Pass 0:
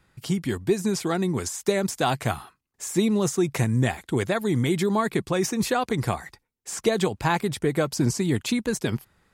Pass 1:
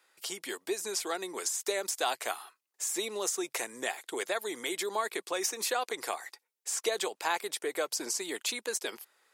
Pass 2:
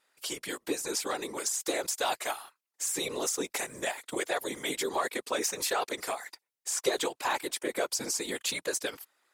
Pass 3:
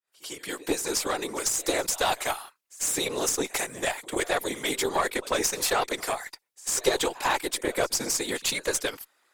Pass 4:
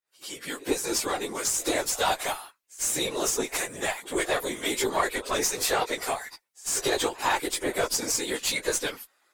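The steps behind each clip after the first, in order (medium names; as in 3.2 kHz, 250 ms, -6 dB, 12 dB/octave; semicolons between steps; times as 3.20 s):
high-pass 410 Hz 24 dB/octave; treble shelf 2.8 kHz +7.5 dB; in parallel at -2.5 dB: compression, threshold -32 dBFS, peak gain reduction 14 dB; on the sum: trim -9 dB
waveshaping leveller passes 1; whisper effect; trim -2 dB
fade-in on the opening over 0.66 s; pre-echo 96 ms -20 dB; Chebyshev shaper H 6 -22 dB, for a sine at -13 dBFS; trim +4.5 dB
phase randomisation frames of 50 ms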